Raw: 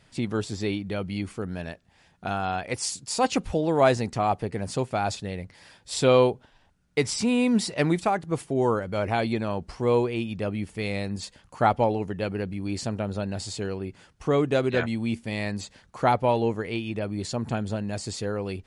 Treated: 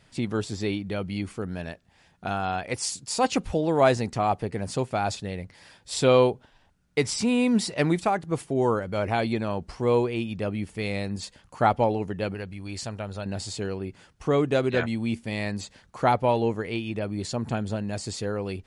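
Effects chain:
0:12.34–0:13.26: parametric band 260 Hz −8.5 dB 2.3 octaves

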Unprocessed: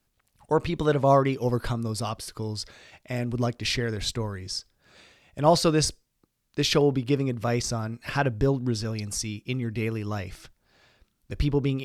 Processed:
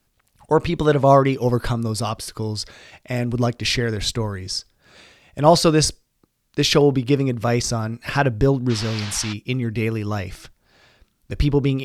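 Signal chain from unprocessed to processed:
0:08.69–0:09.32: noise in a band 680–5,000 Hz −40 dBFS
level +6 dB

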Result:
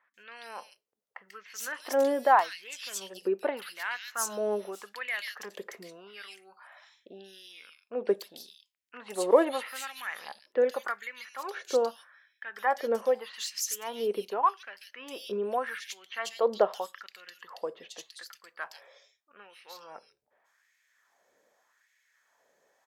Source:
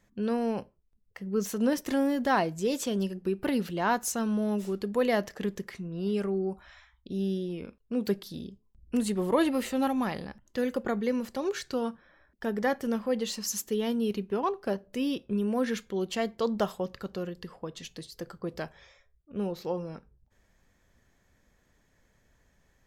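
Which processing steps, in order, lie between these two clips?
multiband delay without the direct sound lows, highs 140 ms, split 2,700 Hz
auto-filter high-pass sine 0.83 Hz 470–2,200 Hz
0:09.24–0:09.65: low-pass filter 12,000 Hz 12 dB per octave

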